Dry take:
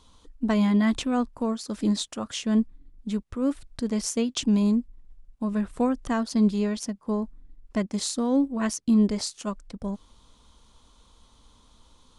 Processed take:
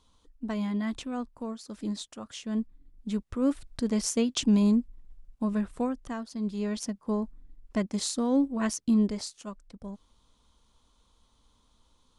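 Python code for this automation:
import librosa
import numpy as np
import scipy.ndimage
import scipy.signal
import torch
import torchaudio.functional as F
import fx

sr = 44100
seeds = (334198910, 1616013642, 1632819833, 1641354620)

y = fx.gain(x, sr, db=fx.line((2.45, -9.0), (3.32, -0.5), (5.45, -0.5), (6.38, -12.5), (6.76, -2.0), (8.83, -2.0), (9.46, -9.0)))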